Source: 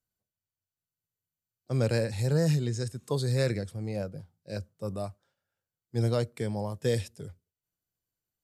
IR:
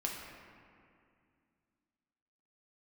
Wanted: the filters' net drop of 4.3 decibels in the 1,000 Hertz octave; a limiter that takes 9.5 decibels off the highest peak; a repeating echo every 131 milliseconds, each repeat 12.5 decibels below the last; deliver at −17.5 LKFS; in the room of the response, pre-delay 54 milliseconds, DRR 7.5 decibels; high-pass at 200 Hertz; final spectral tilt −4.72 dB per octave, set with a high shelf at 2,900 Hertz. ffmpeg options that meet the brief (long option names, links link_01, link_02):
-filter_complex "[0:a]highpass=200,equalizer=frequency=1000:width_type=o:gain=-7,highshelf=frequency=2900:gain=6,alimiter=level_in=1dB:limit=-24dB:level=0:latency=1,volume=-1dB,aecho=1:1:131|262|393:0.237|0.0569|0.0137,asplit=2[link_01][link_02];[1:a]atrim=start_sample=2205,adelay=54[link_03];[link_02][link_03]afir=irnorm=-1:irlink=0,volume=-10dB[link_04];[link_01][link_04]amix=inputs=2:normalize=0,volume=19dB"